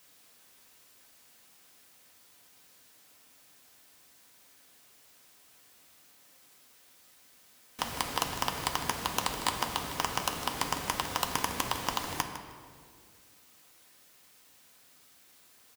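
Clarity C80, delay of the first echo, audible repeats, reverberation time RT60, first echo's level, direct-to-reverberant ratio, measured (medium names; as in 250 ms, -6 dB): 7.5 dB, 155 ms, 1, 2.2 s, -12.5 dB, 3.5 dB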